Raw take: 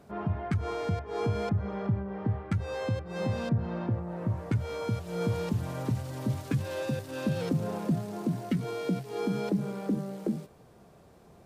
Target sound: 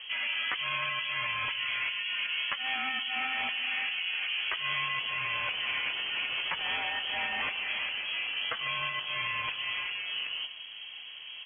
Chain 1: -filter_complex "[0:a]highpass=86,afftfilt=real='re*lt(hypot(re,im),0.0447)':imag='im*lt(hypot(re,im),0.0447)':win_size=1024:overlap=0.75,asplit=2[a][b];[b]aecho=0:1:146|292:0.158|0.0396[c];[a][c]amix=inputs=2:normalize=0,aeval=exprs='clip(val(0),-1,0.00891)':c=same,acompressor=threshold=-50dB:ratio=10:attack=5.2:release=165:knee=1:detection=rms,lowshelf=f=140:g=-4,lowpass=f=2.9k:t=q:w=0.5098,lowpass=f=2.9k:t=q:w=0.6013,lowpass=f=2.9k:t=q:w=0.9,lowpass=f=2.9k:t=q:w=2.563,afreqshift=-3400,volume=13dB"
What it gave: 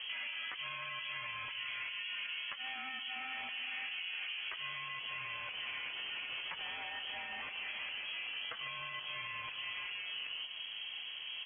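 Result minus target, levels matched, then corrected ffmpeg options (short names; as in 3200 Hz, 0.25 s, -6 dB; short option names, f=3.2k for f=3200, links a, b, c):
compressor: peak gain reduction +13 dB
-filter_complex "[0:a]highpass=86,afftfilt=real='re*lt(hypot(re,im),0.0447)':imag='im*lt(hypot(re,im),0.0447)':win_size=1024:overlap=0.75,asplit=2[a][b];[b]aecho=0:1:146|292:0.158|0.0396[c];[a][c]amix=inputs=2:normalize=0,aeval=exprs='clip(val(0),-1,0.00891)':c=same,lowshelf=f=140:g=-4,lowpass=f=2.9k:t=q:w=0.5098,lowpass=f=2.9k:t=q:w=0.6013,lowpass=f=2.9k:t=q:w=0.9,lowpass=f=2.9k:t=q:w=2.563,afreqshift=-3400,volume=13dB"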